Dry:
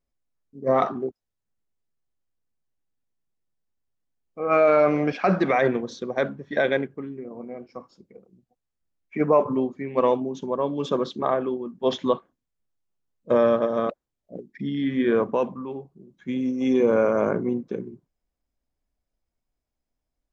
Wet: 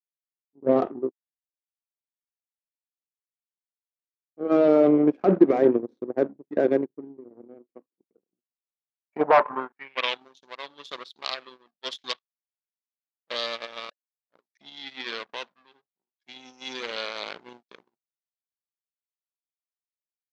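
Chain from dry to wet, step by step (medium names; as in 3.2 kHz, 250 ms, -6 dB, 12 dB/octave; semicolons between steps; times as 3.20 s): power-law waveshaper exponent 2; sine folder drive 10 dB, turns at -7 dBFS; band-pass sweep 330 Hz -> 4.2 kHz, 8.83–10.24 s; trim +4.5 dB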